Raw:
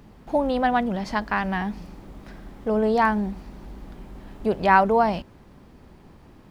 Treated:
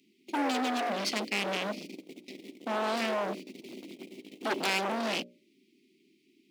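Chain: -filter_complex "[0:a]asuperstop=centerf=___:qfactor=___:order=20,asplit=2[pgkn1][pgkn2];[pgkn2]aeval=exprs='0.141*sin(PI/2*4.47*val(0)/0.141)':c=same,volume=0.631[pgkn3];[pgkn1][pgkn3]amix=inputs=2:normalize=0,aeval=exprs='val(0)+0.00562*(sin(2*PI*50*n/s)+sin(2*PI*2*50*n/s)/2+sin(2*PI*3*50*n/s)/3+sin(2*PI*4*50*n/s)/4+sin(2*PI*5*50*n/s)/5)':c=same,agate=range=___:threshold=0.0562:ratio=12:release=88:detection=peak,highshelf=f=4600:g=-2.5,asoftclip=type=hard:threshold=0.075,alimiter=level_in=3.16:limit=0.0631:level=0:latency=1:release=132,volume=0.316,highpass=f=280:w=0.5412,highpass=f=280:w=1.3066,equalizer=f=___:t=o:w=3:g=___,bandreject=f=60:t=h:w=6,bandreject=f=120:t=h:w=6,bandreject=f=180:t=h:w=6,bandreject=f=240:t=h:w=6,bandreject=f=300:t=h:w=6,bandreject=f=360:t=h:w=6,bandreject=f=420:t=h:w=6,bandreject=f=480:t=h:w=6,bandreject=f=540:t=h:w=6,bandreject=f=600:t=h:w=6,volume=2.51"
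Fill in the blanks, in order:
920, 0.53, 0.0282, 2400, 3.5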